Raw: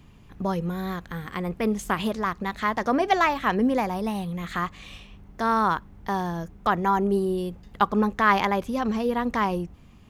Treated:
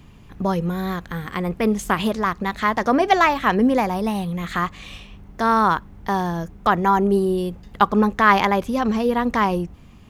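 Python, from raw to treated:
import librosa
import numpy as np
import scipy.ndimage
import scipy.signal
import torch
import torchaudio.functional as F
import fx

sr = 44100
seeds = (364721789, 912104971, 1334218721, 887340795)

y = F.gain(torch.from_numpy(x), 5.0).numpy()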